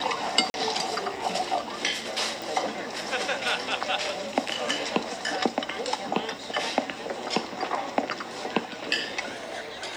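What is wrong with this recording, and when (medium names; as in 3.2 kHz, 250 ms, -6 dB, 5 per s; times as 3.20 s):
0.50–0.54 s: dropout 41 ms
2.42 s: pop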